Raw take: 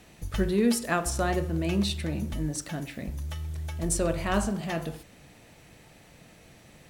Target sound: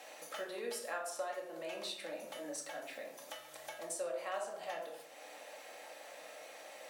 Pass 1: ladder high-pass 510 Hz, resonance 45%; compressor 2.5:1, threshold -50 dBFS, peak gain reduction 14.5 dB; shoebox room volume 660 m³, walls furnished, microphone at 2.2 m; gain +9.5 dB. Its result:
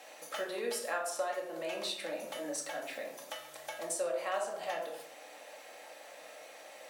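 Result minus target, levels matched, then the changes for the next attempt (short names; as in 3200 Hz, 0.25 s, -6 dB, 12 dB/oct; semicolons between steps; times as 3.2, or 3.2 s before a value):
compressor: peak gain reduction -5 dB
change: compressor 2.5:1, threshold -58.5 dBFS, peak gain reduction 19.5 dB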